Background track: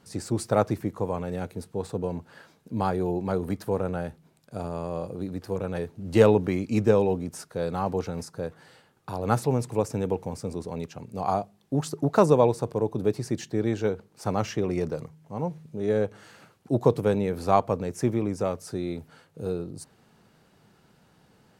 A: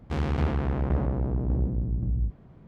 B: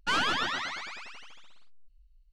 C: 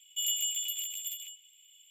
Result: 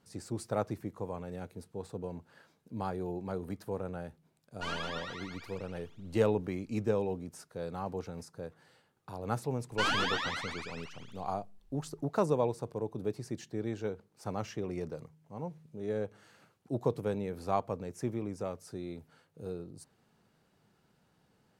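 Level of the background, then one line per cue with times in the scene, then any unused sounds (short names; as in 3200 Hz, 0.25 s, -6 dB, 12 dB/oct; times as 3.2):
background track -10 dB
4.54 add B -14 dB + comb 4.3 ms, depth 95%
9.71 add B -3 dB
not used: A, C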